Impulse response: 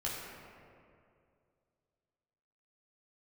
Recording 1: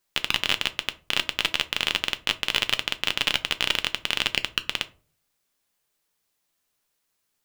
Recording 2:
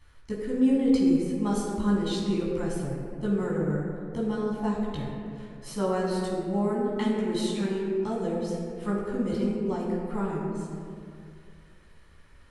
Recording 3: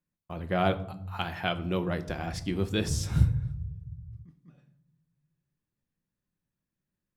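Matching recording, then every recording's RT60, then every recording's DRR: 2; 0.45 s, 2.4 s, no single decay rate; 10.0 dB, -6.5 dB, 8.0 dB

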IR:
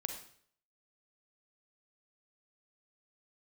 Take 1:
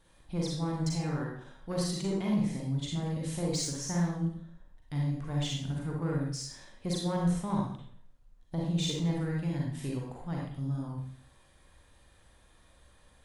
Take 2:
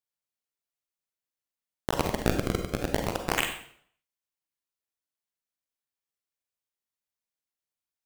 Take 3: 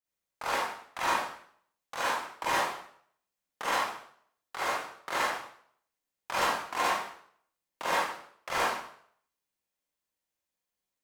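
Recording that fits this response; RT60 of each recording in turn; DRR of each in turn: 2; 0.60 s, 0.60 s, 0.60 s; -3.0 dB, 4.5 dB, -9.5 dB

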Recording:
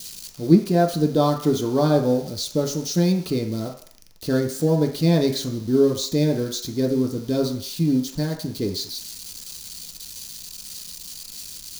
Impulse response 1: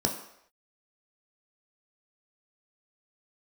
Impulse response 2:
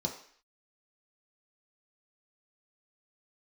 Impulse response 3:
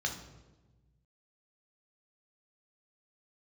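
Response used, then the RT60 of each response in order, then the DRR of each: 2; no single decay rate, 0.55 s, 1.2 s; 1.5 dB, 0.0 dB, 2.0 dB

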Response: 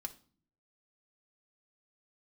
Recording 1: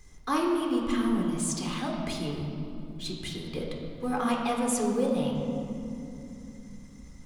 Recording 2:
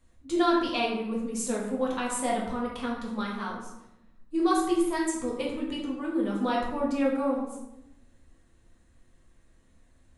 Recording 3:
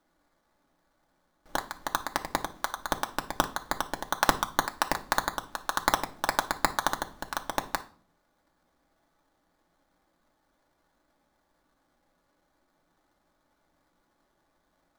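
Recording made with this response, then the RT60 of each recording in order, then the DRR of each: 3; 2.9 s, 0.90 s, 0.45 s; -1.0 dB, -4.0 dB, 3.5 dB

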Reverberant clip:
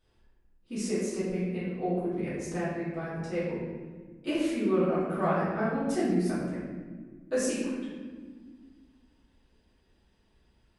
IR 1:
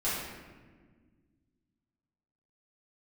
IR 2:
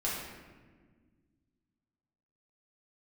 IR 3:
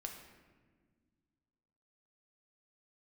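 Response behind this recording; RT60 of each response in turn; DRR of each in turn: 1; 1.5 s, 1.5 s, 1.6 s; -11.5 dB, -7.0 dB, 2.5 dB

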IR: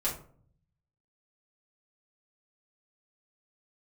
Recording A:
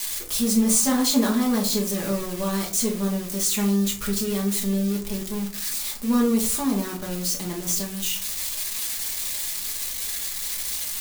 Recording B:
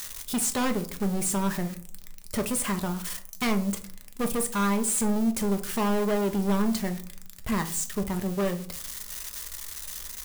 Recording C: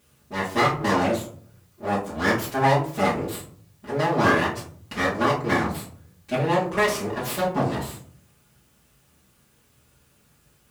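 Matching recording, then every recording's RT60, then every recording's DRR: C; 0.50 s, 0.55 s, 0.50 s; -2.5 dB, 6.0 dB, -7.5 dB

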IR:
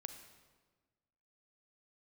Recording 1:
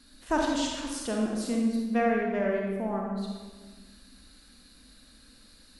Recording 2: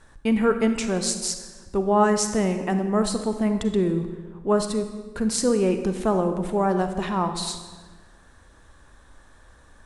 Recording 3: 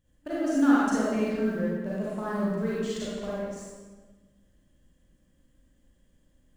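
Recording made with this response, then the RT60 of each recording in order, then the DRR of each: 2; 1.4 s, 1.4 s, 1.4 s; -1.5 dB, 7.5 dB, -8.0 dB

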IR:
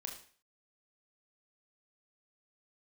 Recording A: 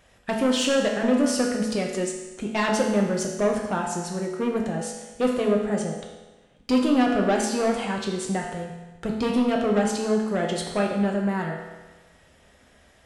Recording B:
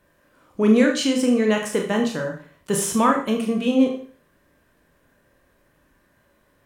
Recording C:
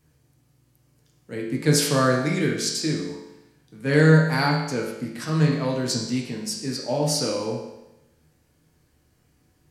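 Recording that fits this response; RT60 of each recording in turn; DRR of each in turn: B; 1.2 s, 0.45 s, 0.90 s; -0.5 dB, 1.5 dB, -2.0 dB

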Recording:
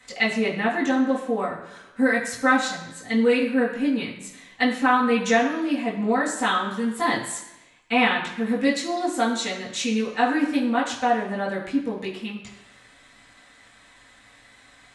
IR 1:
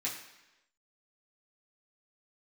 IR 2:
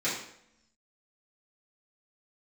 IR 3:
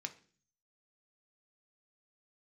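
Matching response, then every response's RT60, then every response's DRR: 1; 1.0 s, 0.75 s, 0.45 s; -7.0 dB, -11.5 dB, 5.0 dB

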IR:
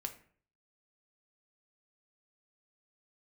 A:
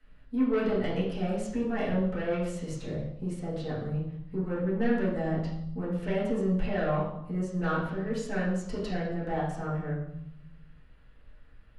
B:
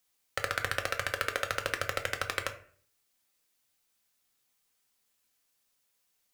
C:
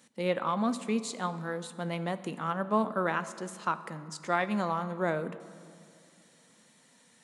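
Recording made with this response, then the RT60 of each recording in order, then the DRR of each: B; 0.75 s, 0.50 s, 2.4 s; -10.5 dB, 4.5 dB, 11.5 dB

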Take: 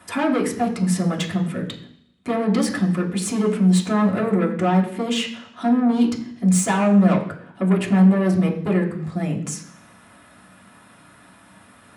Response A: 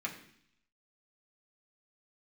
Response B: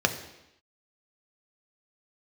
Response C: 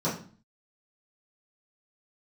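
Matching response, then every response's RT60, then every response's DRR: A; 0.65 s, 0.85 s, 0.40 s; -2.5 dB, 5.0 dB, -11.0 dB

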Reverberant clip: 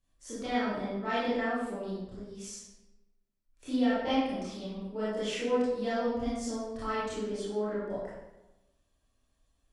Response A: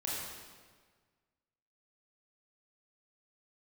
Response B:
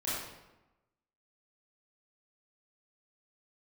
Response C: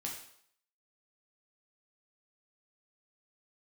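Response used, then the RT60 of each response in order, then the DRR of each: B; 1.6 s, 1.0 s, 0.65 s; -6.0 dB, -10.5 dB, -2.0 dB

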